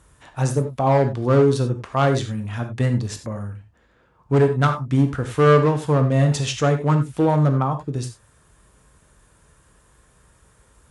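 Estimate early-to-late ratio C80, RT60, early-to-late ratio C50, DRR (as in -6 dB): 14.0 dB, no single decay rate, 9.5 dB, 6.0 dB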